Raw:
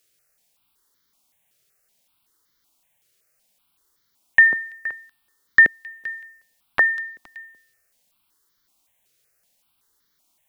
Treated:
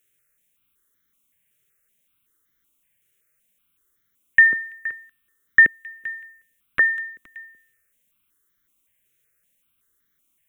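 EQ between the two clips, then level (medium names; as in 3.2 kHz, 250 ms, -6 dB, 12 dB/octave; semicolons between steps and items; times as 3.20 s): static phaser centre 2 kHz, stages 4; 0.0 dB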